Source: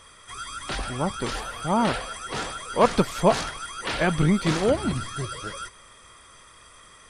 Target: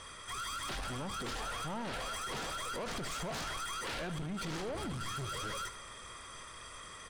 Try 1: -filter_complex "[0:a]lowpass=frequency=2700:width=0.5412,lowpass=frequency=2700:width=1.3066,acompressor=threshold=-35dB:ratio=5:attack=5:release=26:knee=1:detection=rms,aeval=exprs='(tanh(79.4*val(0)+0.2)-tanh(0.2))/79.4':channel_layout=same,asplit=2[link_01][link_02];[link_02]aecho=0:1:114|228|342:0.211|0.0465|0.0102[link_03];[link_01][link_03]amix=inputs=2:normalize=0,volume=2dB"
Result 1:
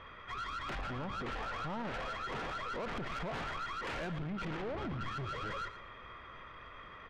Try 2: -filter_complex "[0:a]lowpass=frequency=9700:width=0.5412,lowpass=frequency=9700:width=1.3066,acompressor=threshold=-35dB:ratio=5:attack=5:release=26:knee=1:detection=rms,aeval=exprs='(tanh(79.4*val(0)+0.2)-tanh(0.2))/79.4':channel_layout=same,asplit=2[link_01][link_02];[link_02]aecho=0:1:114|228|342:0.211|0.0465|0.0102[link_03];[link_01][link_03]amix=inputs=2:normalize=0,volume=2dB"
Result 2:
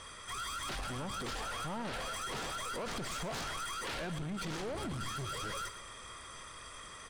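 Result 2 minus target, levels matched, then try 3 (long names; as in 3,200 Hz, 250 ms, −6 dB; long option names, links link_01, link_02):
echo 38 ms late
-filter_complex "[0:a]lowpass=frequency=9700:width=0.5412,lowpass=frequency=9700:width=1.3066,acompressor=threshold=-35dB:ratio=5:attack=5:release=26:knee=1:detection=rms,aeval=exprs='(tanh(79.4*val(0)+0.2)-tanh(0.2))/79.4':channel_layout=same,asplit=2[link_01][link_02];[link_02]aecho=0:1:76|152|228:0.211|0.0465|0.0102[link_03];[link_01][link_03]amix=inputs=2:normalize=0,volume=2dB"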